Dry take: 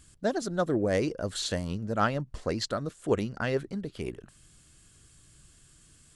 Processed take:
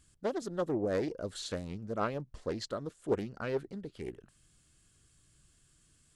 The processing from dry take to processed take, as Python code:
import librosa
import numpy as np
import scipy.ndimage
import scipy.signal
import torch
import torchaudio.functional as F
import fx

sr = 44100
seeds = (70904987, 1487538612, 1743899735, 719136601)

y = fx.dynamic_eq(x, sr, hz=440.0, q=1.2, threshold_db=-39.0, ratio=4.0, max_db=5)
y = fx.doppler_dist(y, sr, depth_ms=0.3)
y = F.gain(torch.from_numpy(y), -8.5).numpy()